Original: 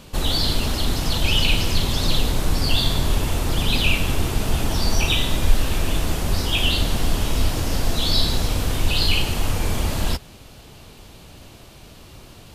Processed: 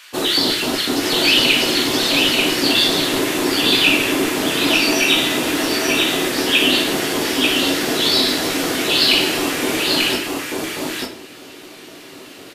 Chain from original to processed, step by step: LFO high-pass square 4 Hz 310–1800 Hz; echo 0.89 s -3 dB; reverb RT60 0.45 s, pre-delay 7 ms, DRR 2 dB; gain +3.5 dB

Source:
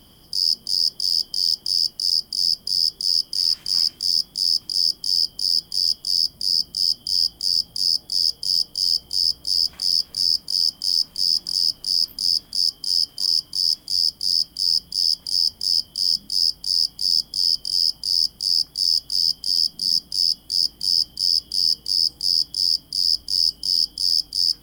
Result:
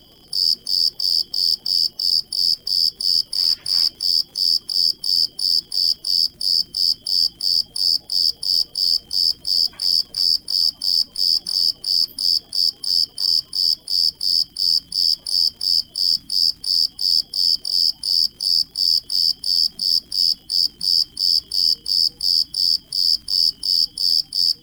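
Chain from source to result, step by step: bin magnitudes rounded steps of 30 dB; notches 50/100/150/200/250/300 Hz; crackle 82/s -41 dBFS; gain +2.5 dB

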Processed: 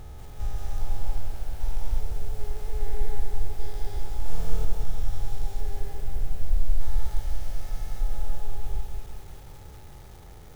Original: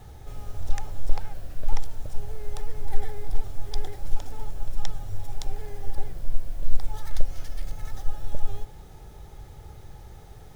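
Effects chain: stepped spectrum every 0.4 s; 4.22–4.65 flutter echo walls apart 4.3 m, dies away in 1.3 s; lo-fi delay 0.185 s, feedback 55%, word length 8-bit, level -5.5 dB

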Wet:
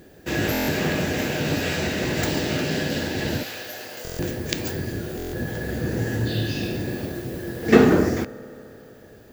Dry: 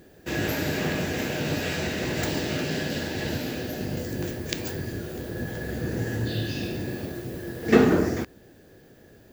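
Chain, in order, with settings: 3.43–4.05 HPF 780 Hz 12 dB/oct; reverb RT60 3.7 s, pre-delay 3 ms, DRR 17.5 dB; stuck buffer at 0.52/4.03/5.17, samples 1024, times 6; gain +3.5 dB

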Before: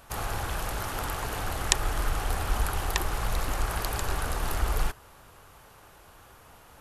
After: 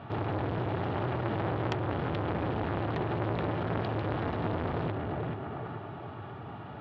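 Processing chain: in parallel at -6.5 dB: one-sided clip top -24 dBFS; on the sum: elliptic band-pass 110–3500 Hz, stop band 40 dB; on a send: tape echo 0.431 s, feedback 43%, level -4.5 dB, low-pass 2200 Hz; on the sum: dynamic EQ 1100 Hz, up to -7 dB, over -46 dBFS, Q 1.8; compressor 1.5:1, threshold -39 dBFS, peak gain reduction 7 dB; tilt -3.5 dB/oct; notch comb 520 Hz; core saturation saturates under 1100 Hz; gain +5.5 dB

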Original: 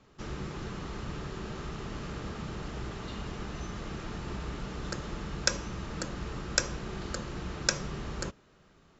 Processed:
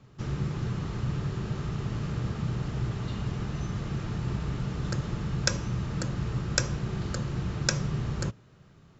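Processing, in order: bell 120 Hz +14.5 dB 1.1 oct

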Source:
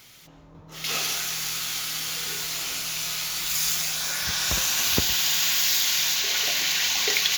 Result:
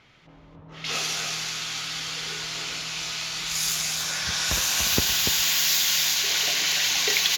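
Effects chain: low-pass opened by the level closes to 2200 Hz, open at -19.5 dBFS; echo 0.29 s -6.5 dB

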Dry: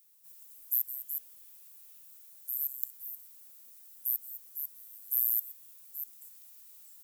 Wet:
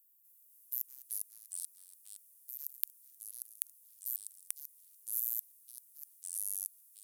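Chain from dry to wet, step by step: per-bin compression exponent 0.4; added harmonics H 5 -29 dB, 7 -15 dB, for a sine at 0 dBFS; echoes that change speed 0.248 s, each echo -3 st, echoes 2; gain -3.5 dB

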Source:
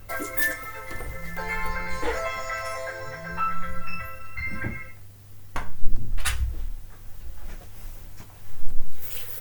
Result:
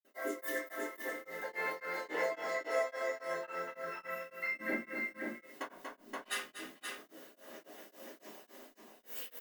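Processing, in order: compressor, threshold -20 dBFS, peak gain reduction 14 dB; elliptic high-pass 260 Hz, stop band 70 dB; vocal rider 2 s; tapped delay 0.238/0.525 s -7/-3.5 dB; reverb RT60 0.35 s, pre-delay 46 ms; beating tremolo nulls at 3.6 Hz

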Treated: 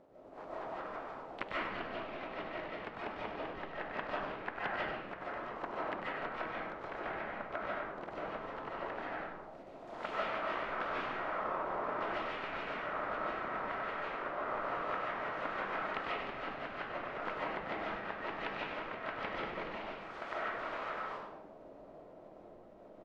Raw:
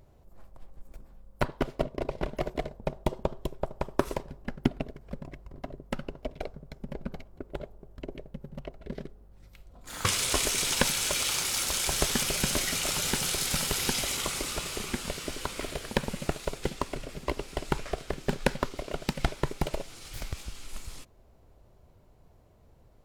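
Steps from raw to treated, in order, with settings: spectral contrast lowered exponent 0.48; LPF 3900 Hz 6 dB/oct; treble ducked by the level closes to 1000 Hz, closed at -31.5 dBFS; notches 50/100/150/200 Hz; auto-wah 510–2900 Hz, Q 2.3, up, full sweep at -31 dBFS; vibrato 6.1 Hz 33 cents; harmoniser -12 st -5 dB, +7 st -13 dB; on a send: frequency-shifting echo 99 ms, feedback 36%, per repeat -130 Hz, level -6 dB; on the sum: digital reverb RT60 0.85 s, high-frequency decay 0.4×, pre-delay 0.105 s, DRR -6.5 dB; gain +1.5 dB

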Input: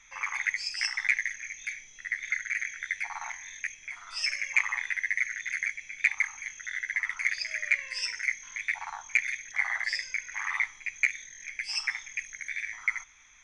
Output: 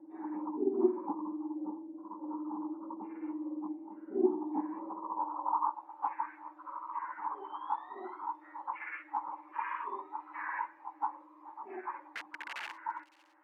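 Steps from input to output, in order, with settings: spectrum mirrored in octaves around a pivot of 1400 Hz; 12–12.73 wrapped overs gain 32 dB; band-pass sweep 280 Hz -> 1800 Hz, 4.72–5.95; on a send: thin delay 0.561 s, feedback 48%, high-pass 3800 Hz, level -17 dB; on the sum: gain +4 dB

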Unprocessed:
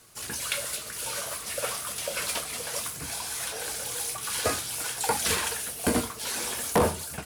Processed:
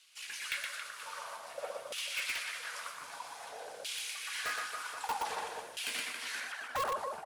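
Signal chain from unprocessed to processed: 6.4–6.85 sine-wave speech; high shelf 2500 Hz +11 dB; reverse bouncing-ball echo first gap 0.12 s, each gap 1.3×, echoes 5; LFO band-pass saw down 0.52 Hz 550–3000 Hz; in parallel at -5.5 dB: wrapped overs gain 22.5 dB; on the sum: gain -8 dB

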